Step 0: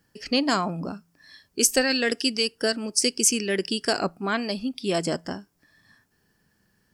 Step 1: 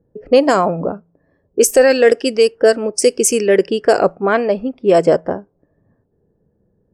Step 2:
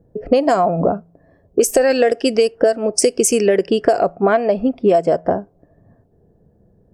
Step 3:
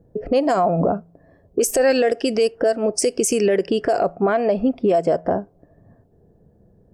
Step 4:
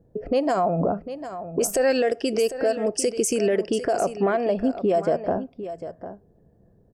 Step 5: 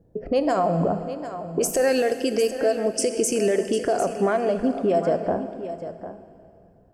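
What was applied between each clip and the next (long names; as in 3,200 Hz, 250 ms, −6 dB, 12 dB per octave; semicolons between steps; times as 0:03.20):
low-pass that shuts in the quiet parts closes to 380 Hz, open at −18 dBFS; octave-band graphic EQ 250/500/4,000 Hz −5/+12/−11 dB; boost into a limiter +9.5 dB; level −1 dB
parametric band 690 Hz +10 dB 0.25 octaves; downward compressor 12 to 1, threshold −16 dBFS, peak gain reduction 16 dB; low-shelf EQ 180 Hz +5.5 dB; level +4.5 dB
brickwall limiter −10 dBFS, peak gain reduction 8.5 dB
single-tap delay 750 ms −12 dB; level −4 dB
dense smooth reverb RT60 2.6 s, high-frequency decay 0.95×, DRR 9.5 dB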